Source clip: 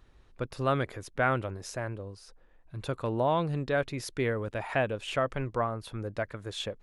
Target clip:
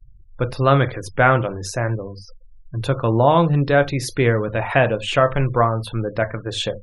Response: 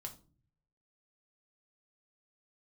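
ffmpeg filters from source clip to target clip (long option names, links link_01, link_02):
-filter_complex "[0:a]asplit=2[link_01][link_02];[1:a]atrim=start_sample=2205,atrim=end_sample=3528,asetrate=37485,aresample=44100[link_03];[link_02][link_03]afir=irnorm=-1:irlink=0,volume=4.5dB[link_04];[link_01][link_04]amix=inputs=2:normalize=0,afftfilt=real='re*gte(hypot(re,im),0.00794)':imag='im*gte(hypot(re,im),0.00794)':win_size=1024:overlap=0.75,volume=5.5dB"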